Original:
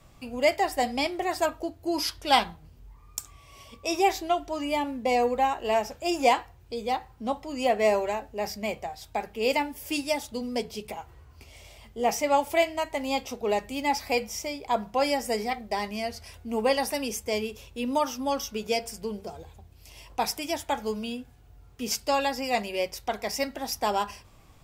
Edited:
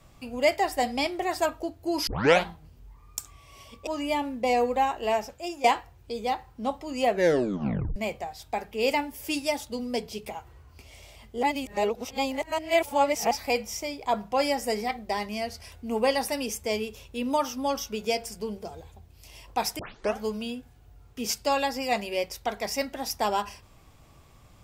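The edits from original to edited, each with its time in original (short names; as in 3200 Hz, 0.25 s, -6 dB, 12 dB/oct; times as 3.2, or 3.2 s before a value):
2.07 tape start 0.39 s
3.87–4.49 cut
5.5–6.26 fade out equal-power, to -15 dB
7.71 tape stop 0.87 s
12.05–13.93 reverse
20.41 tape start 0.40 s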